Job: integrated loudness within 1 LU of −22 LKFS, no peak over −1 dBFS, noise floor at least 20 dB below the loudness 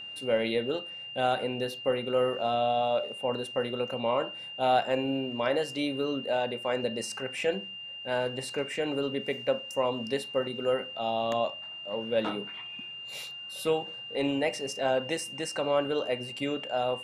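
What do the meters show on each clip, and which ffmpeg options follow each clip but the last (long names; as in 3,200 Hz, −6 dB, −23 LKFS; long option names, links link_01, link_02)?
interfering tone 2,800 Hz; level of the tone −39 dBFS; integrated loudness −30.5 LKFS; sample peak −13.0 dBFS; target loudness −22.0 LKFS
→ -af "bandreject=frequency=2800:width=30"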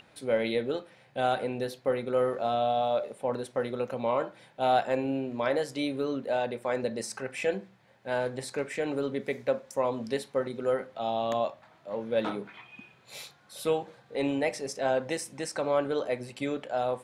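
interfering tone none found; integrated loudness −31.0 LKFS; sample peak −13.5 dBFS; target loudness −22.0 LKFS
→ -af "volume=9dB"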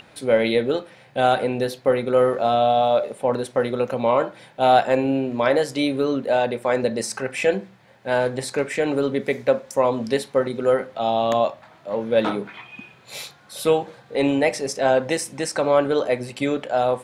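integrated loudness −22.0 LKFS; sample peak −4.5 dBFS; background noise floor −51 dBFS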